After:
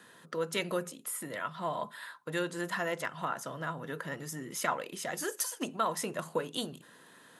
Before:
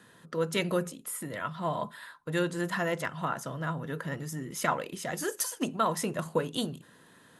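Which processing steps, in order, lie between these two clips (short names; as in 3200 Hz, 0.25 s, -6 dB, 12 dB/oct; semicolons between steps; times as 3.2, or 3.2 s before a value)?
HPF 330 Hz 6 dB/oct; in parallel at 0 dB: compressor, threshold -40 dBFS, peak gain reduction 16 dB; on the sum: gain -4 dB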